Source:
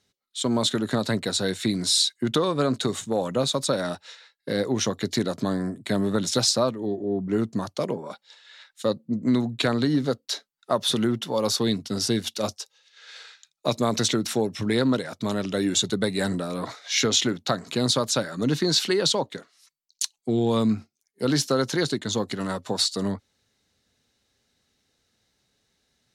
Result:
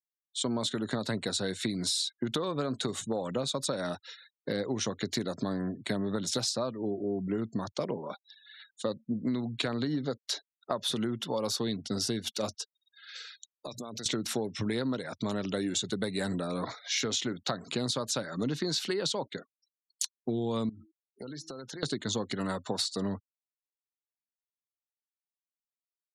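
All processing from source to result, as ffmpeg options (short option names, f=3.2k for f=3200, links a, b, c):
-filter_complex "[0:a]asettb=1/sr,asplit=3[a][b][c];[a]atrim=end=13.154[d];[b]atrim=start=13.15:end=14.06,asetpts=PTS-STARTPTS,afade=t=in:d=0.004:c=qsin,afade=t=out:st=0.906:d=0.004:c=qsin,aemphasis=mode=production:type=cd,bandreject=f=60:t=h:w=6,bandreject=f=120:t=h:w=6,bandreject=f=180:t=h:w=6,acompressor=threshold=-34dB:ratio=10:attack=3.2:release=140:knee=1:detection=peak[e];[c]atrim=start=14.056[f];[d][e]acrossfade=d=0.004:c1=hsin:c2=qsin[g];[g][f]acrossfade=d=0.004:c1=qsin:c2=hsin,asettb=1/sr,asplit=3[h][i][j];[h]atrim=end=20.694[k];[i]atrim=start=20.69:end=21.83,asetpts=PTS-STARTPTS,afade=t=in:d=0.004:c=qsin,afade=t=out:st=1.136:d=0.004:c=qsin,bandreject=f=160.8:t=h:w=4,bandreject=f=321.6:t=h:w=4,bandreject=f=482.4:t=h:w=4,bandreject=f=643.2:t=h:w=4,bandreject=f=804:t=h:w=4,bandreject=f=964.8:t=h:w=4,bandreject=f=1.1256k:t=h:w=4,bandreject=f=1.2864k:t=h:w=4,bandreject=f=1.4472k:t=h:w=4,bandreject=f=1.608k:t=h:w=4,bandreject=f=1.7688k:t=h:w=4,bandreject=f=1.9296k:t=h:w=4,acompressor=threshold=-36dB:ratio=12:attack=3.2:release=140:knee=1:detection=peak[l];[j]atrim=start=21.826[m];[k][l]acrossfade=d=0.004:c1=hsin:c2=qsin[n];[n][m]acrossfade=d=0.004:c1=qsin:c2=hsin,afftfilt=real='re*gte(hypot(re,im),0.00562)':imag='im*gte(hypot(re,im),0.00562)':win_size=1024:overlap=0.75,acompressor=threshold=-26dB:ratio=6,volume=-2dB"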